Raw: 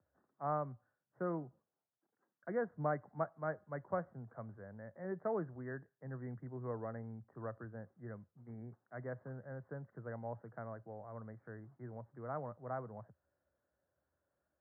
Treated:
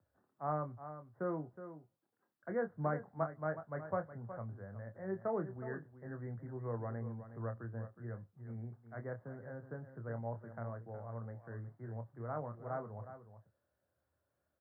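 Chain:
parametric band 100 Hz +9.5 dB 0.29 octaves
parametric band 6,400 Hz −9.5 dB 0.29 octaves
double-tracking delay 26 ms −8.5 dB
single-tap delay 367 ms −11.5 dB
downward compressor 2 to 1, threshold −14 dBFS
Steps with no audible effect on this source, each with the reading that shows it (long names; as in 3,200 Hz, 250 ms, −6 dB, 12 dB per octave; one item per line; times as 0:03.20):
parametric band 6,400 Hz: nothing at its input above 1,800 Hz
downward compressor, threshold −14 dBFS: peak of its input −23.5 dBFS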